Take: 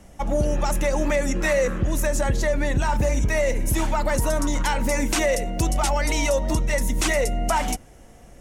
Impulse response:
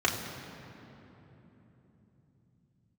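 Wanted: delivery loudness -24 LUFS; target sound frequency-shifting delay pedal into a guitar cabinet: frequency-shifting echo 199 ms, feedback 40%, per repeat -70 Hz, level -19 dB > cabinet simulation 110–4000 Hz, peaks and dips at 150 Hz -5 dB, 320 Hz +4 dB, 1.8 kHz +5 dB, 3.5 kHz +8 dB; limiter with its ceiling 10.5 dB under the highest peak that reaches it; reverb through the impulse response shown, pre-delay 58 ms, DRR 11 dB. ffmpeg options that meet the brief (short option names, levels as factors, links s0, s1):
-filter_complex "[0:a]alimiter=limit=0.075:level=0:latency=1,asplit=2[s0][s1];[1:a]atrim=start_sample=2205,adelay=58[s2];[s1][s2]afir=irnorm=-1:irlink=0,volume=0.0708[s3];[s0][s3]amix=inputs=2:normalize=0,asplit=4[s4][s5][s6][s7];[s5]adelay=199,afreqshift=-70,volume=0.112[s8];[s6]adelay=398,afreqshift=-140,volume=0.0447[s9];[s7]adelay=597,afreqshift=-210,volume=0.018[s10];[s4][s8][s9][s10]amix=inputs=4:normalize=0,highpass=110,equalizer=f=150:t=q:w=4:g=-5,equalizer=f=320:t=q:w=4:g=4,equalizer=f=1800:t=q:w=4:g=5,equalizer=f=3500:t=q:w=4:g=8,lowpass=f=4000:w=0.5412,lowpass=f=4000:w=1.3066,volume=2.37"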